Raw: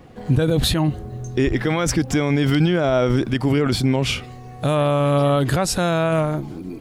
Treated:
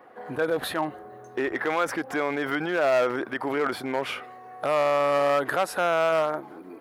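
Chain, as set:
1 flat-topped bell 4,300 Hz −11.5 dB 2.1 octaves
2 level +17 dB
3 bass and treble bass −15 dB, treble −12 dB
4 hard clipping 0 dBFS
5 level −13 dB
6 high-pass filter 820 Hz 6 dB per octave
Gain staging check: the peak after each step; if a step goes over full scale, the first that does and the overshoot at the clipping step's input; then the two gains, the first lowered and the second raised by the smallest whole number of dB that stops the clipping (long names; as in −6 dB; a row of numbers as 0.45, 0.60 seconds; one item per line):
−8.0, +9.0, +8.0, 0.0, −13.0, −10.5 dBFS
step 2, 8.0 dB
step 2 +9 dB, step 5 −5 dB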